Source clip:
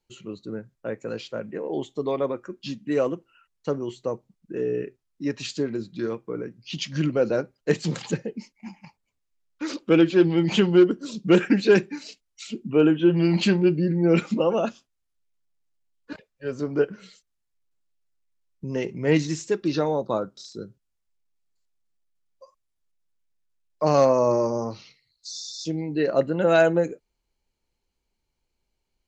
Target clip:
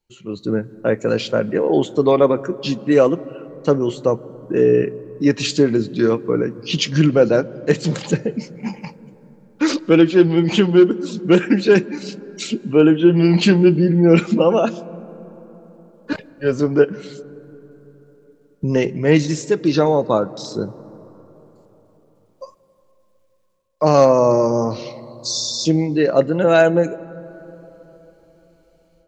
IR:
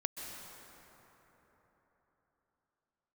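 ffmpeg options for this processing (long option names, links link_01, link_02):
-filter_complex "[0:a]dynaudnorm=framelen=230:gausssize=3:maxgain=15dB,asplit=2[link_01][link_02];[1:a]atrim=start_sample=2205,lowshelf=frequency=150:gain=8,highshelf=frequency=2400:gain=-12[link_03];[link_02][link_03]afir=irnorm=-1:irlink=0,volume=-15.5dB[link_04];[link_01][link_04]amix=inputs=2:normalize=0,volume=-2dB"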